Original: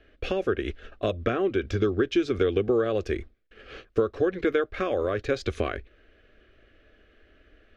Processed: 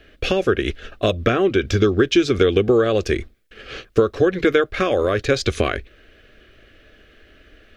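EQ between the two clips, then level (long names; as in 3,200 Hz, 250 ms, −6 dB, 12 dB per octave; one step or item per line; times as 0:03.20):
parametric band 150 Hz +7.5 dB 0.59 octaves
high-shelf EQ 3,200 Hz +10.5 dB
+7.0 dB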